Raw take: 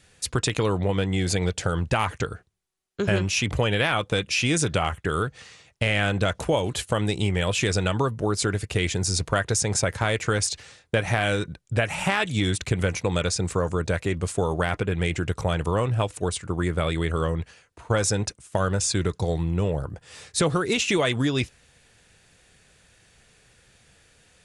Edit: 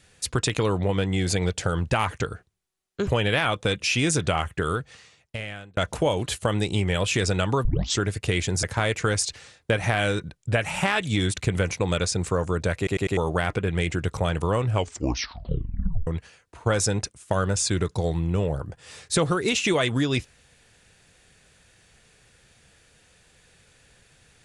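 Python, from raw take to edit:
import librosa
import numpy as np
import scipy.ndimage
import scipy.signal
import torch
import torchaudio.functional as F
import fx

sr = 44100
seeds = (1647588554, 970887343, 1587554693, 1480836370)

y = fx.edit(x, sr, fx.cut(start_s=3.07, length_s=0.47),
    fx.fade_out_span(start_s=5.07, length_s=1.17),
    fx.tape_start(start_s=8.12, length_s=0.35),
    fx.cut(start_s=9.1, length_s=0.77),
    fx.stutter_over(start_s=14.01, slice_s=0.1, count=4),
    fx.tape_stop(start_s=15.92, length_s=1.39), tone=tone)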